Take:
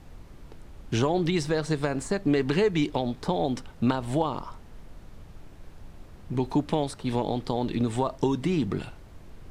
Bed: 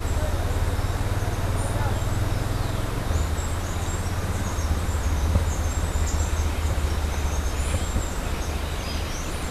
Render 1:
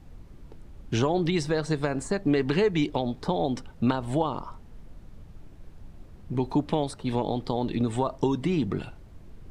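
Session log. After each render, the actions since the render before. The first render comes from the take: denoiser 6 dB, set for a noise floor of -48 dBFS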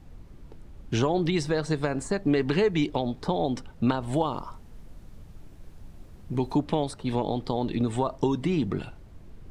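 4.13–6.58 high shelf 5300 Hz +7 dB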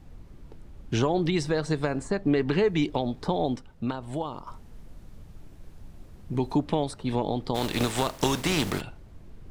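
1.98–2.68 high shelf 5600 Hz -7.5 dB; 3.56–4.47 gain -6 dB; 7.54–8.8 spectral contrast lowered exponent 0.5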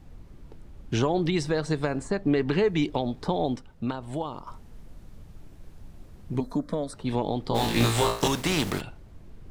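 6.4–6.94 fixed phaser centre 550 Hz, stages 8; 7.49–8.28 flutter echo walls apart 3 m, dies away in 0.4 s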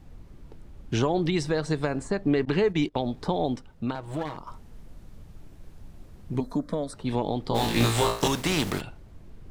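2.45–3.12 gate -31 dBFS, range -21 dB; 3.95–4.37 minimum comb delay 6.3 ms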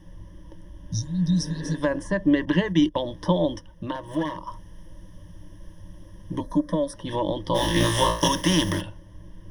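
0.76–1.72 spectral repair 220–3600 Hz both; ripple EQ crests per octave 1.2, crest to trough 18 dB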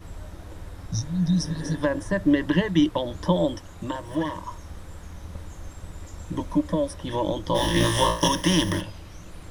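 add bed -17 dB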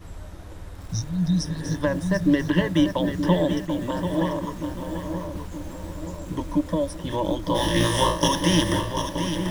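darkening echo 0.925 s, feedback 57%, low-pass 1300 Hz, level -7.5 dB; lo-fi delay 0.74 s, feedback 35%, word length 7-bit, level -8 dB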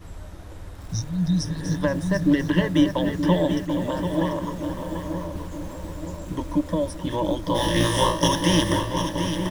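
outdoor echo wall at 82 m, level -10 dB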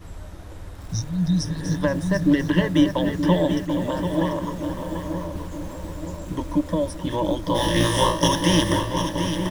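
gain +1 dB

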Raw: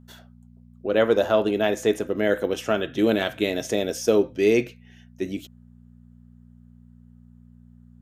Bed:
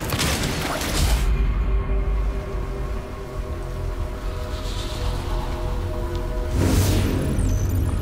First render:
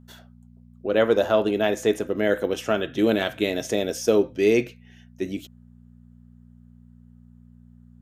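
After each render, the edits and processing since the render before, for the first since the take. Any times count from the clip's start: nothing audible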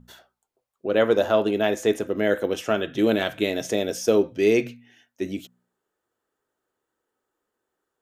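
de-hum 60 Hz, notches 4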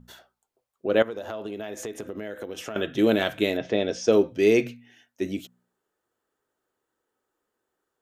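1.02–2.76 compressor 10:1, threshold -30 dBFS; 3.56–4.11 LPF 2900 Hz -> 7100 Hz 24 dB/oct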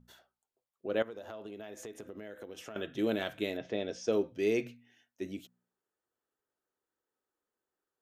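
gain -10.5 dB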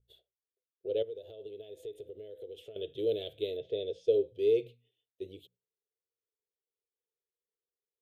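gate -60 dBFS, range -10 dB; EQ curve 110 Hz 0 dB, 240 Hz -21 dB, 450 Hz +7 dB, 1000 Hz -29 dB, 1600 Hz -29 dB, 3500 Hz +2 dB, 5800 Hz -22 dB, 9300 Hz -9 dB

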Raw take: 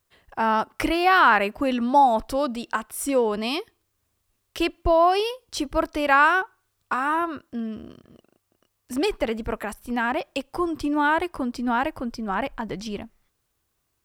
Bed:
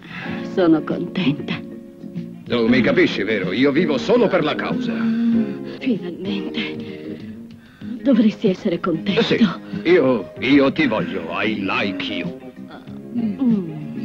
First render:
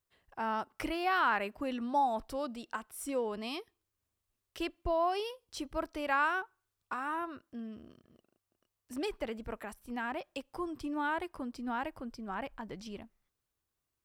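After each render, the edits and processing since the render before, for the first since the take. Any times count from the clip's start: gain -12.5 dB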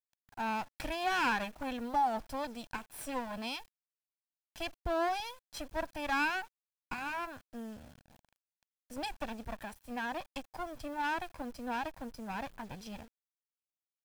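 minimum comb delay 1.2 ms; bit-crush 10-bit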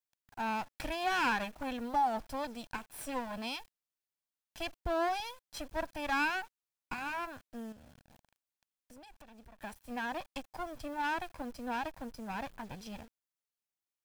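7.72–9.63 compressor, threshold -53 dBFS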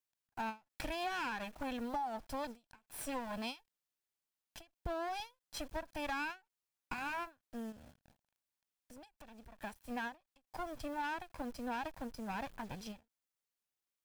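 compressor 6:1, threshold -36 dBFS, peak gain reduction 10 dB; ending taper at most 270 dB/s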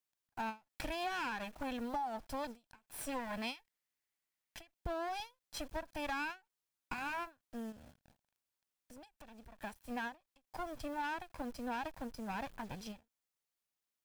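3.19–4.73 bell 2000 Hz +8 dB 0.49 oct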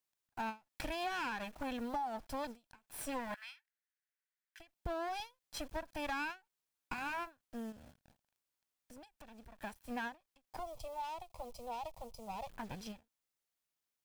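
3.34–4.6 ladder high-pass 1400 Hz, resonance 65%; 10.59–12.49 fixed phaser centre 670 Hz, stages 4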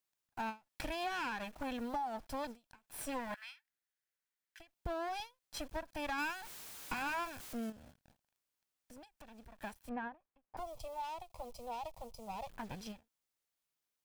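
6.18–7.7 zero-crossing step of -42.5 dBFS; 9.89–10.57 LPF 1500 Hz

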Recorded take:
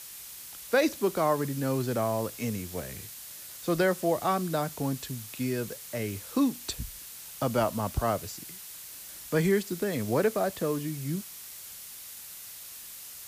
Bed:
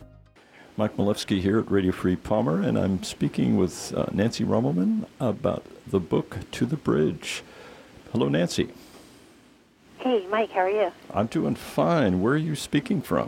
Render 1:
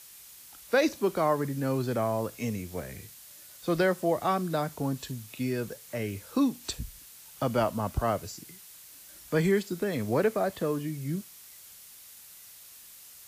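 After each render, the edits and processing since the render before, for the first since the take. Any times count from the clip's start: noise print and reduce 6 dB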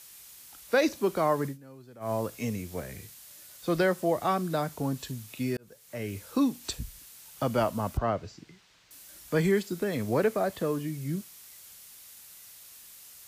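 1.46–2.12 dip -20.5 dB, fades 0.12 s; 5.57–6.17 fade in; 7.97–8.91 air absorption 170 m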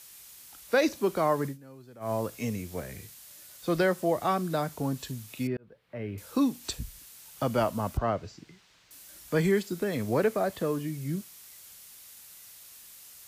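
5.47–6.18 air absorption 420 m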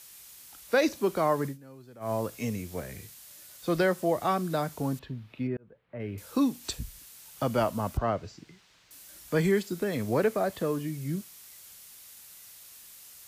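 4.99–6 air absorption 370 m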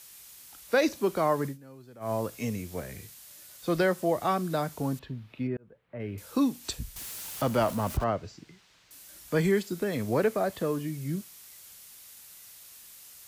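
6.96–8.04 zero-crossing step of -36.5 dBFS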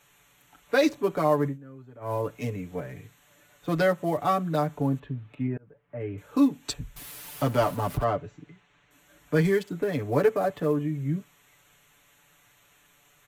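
Wiener smoothing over 9 samples; comb 6.9 ms, depth 87%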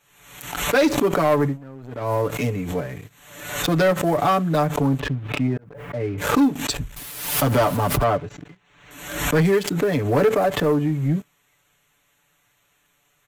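sample leveller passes 2; backwards sustainer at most 65 dB/s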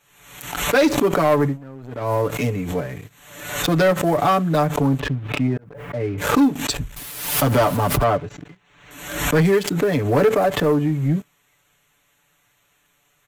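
gain +1.5 dB

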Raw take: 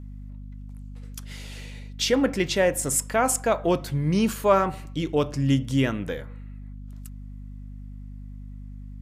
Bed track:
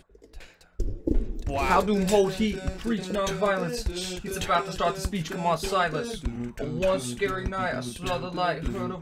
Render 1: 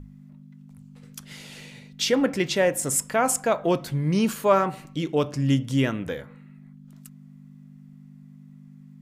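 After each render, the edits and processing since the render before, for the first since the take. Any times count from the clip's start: notches 50/100 Hz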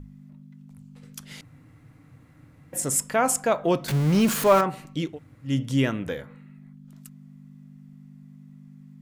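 1.41–2.73 room tone; 3.88–4.61 zero-crossing step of -25 dBFS; 5.11–5.51 room tone, crossfade 0.16 s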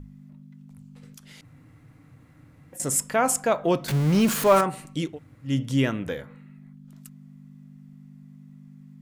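1.13–2.8 compressor 3:1, threshold -45 dBFS; 4.56–5.07 bell 9000 Hz +11.5 dB 0.59 oct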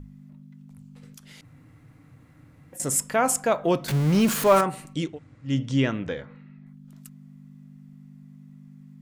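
4.93–6.65 LPF 9300 Hz -> 5000 Hz 24 dB/oct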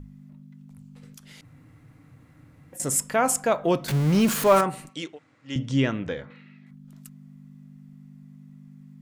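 4.89–5.56 weighting filter A; 6.3–6.71 weighting filter D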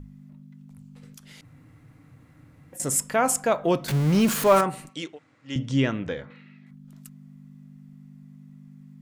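nothing audible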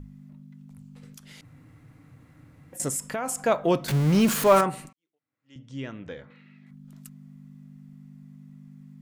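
2.88–3.41 compressor, threshold -26 dBFS; 4.93–6.79 fade in quadratic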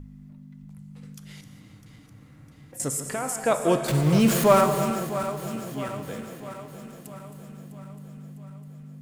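regenerating reverse delay 0.327 s, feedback 74%, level -11.5 dB; non-linear reverb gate 0.43 s flat, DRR 7.5 dB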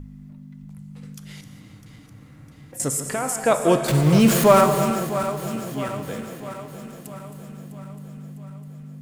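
gain +4 dB; limiter -3 dBFS, peak gain reduction 1.5 dB

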